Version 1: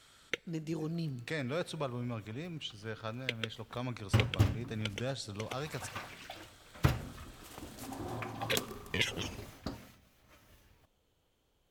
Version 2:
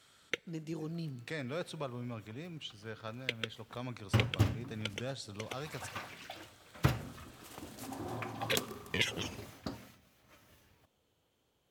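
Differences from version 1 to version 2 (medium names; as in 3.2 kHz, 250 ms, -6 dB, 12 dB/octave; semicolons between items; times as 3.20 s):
speech -3.0 dB; master: add high-pass 83 Hz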